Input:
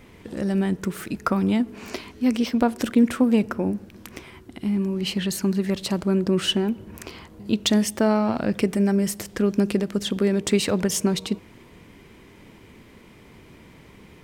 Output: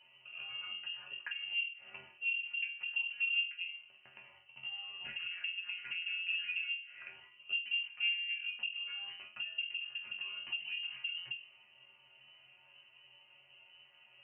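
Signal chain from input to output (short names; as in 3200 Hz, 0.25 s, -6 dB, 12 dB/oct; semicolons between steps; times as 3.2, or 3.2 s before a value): in parallel at -5.5 dB: decimation with a swept rate 17×, swing 60% 0.69 Hz; on the sum: spectral gain 5.05–7.09, 260–1700 Hz +11 dB; resonator bank F3 major, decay 0.41 s; on a send at -22 dB: reverb RT60 0.80 s, pre-delay 6 ms; on the sum: dynamic EQ 630 Hz, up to -5 dB, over -51 dBFS, Q 0.96; treble ducked by the level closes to 660 Hz, closed at -36 dBFS; inverted band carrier 3000 Hz; HPF 64 Hz 24 dB/oct; bell 240 Hz +7.5 dB 0.21 oct; notches 50/100/150/200/250/300/350/400 Hz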